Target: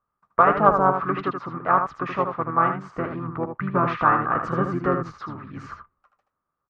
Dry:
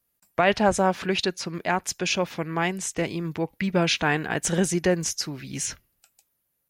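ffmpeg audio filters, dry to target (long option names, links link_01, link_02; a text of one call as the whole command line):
ffmpeg -i in.wav -filter_complex "[0:a]asplit=2[link_01][link_02];[link_02]asetrate=33038,aresample=44100,atempo=1.33484,volume=-4dB[link_03];[link_01][link_03]amix=inputs=2:normalize=0,lowpass=frequency=1200:width_type=q:width=9.1,asplit=2[link_04][link_05];[link_05]aecho=0:1:78:0.447[link_06];[link_04][link_06]amix=inputs=2:normalize=0,aeval=exprs='1.33*(cos(1*acos(clip(val(0)/1.33,-1,1)))-cos(1*PI/2))+0.0237*(cos(3*acos(clip(val(0)/1.33,-1,1)))-cos(3*PI/2))':channel_layout=same,volume=-3.5dB" out.wav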